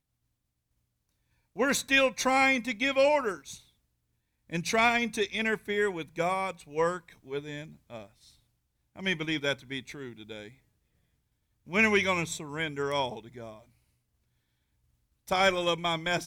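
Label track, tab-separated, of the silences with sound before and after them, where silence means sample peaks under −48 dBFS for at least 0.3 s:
3.600000	4.500000	silence
8.300000	8.960000	silence
10.530000	11.670000	silence
13.610000	15.280000	silence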